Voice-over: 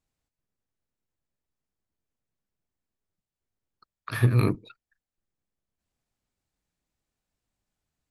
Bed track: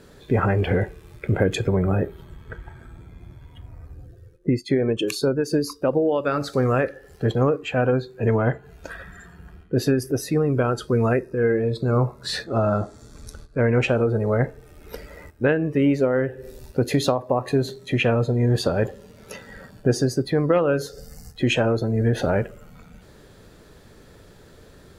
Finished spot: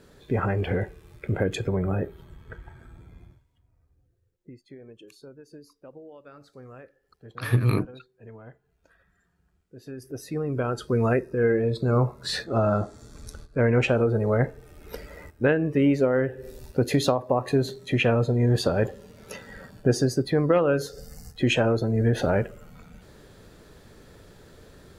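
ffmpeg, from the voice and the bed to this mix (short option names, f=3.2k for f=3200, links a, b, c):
-filter_complex "[0:a]adelay=3300,volume=-0.5dB[a];[1:a]volume=18.5dB,afade=t=out:st=3.19:d=0.25:silence=0.1,afade=t=in:st=9.82:d=1.37:silence=0.0668344[b];[a][b]amix=inputs=2:normalize=0"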